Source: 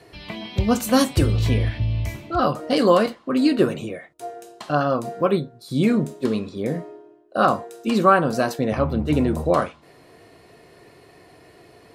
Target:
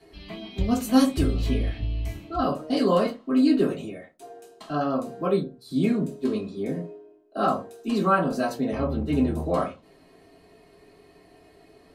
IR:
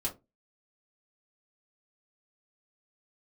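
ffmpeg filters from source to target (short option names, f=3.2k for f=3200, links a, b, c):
-filter_complex "[1:a]atrim=start_sample=2205[a];[0:a][a]afir=irnorm=-1:irlink=0,volume=-9dB"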